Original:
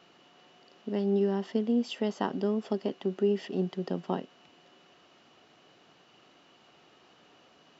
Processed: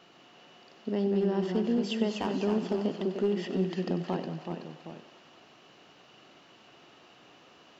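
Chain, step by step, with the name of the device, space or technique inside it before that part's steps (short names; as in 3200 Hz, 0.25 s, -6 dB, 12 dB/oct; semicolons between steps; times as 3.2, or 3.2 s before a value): clipper into limiter (hard clip -19.5 dBFS, distortion -25 dB; limiter -23 dBFS, peak gain reduction 3.5 dB); echoes that change speed 0.132 s, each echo -1 st, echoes 2, each echo -6 dB; thinning echo 95 ms, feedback 82%, high-pass 360 Hz, level -13 dB; gain +2 dB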